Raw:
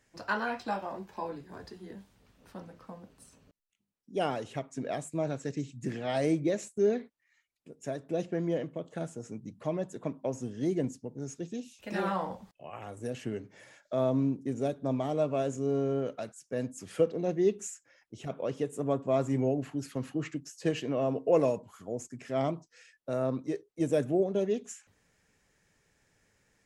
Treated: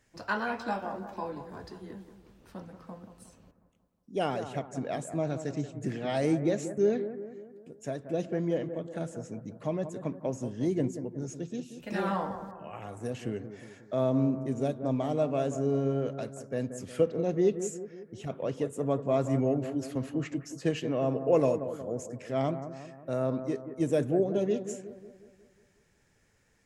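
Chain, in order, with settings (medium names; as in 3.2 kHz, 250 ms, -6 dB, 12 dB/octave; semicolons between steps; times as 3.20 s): bass shelf 160 Hz +4 dB; on a send: bucket-brigade echo 181 ms, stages 2048, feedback 52%, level -10.5 dB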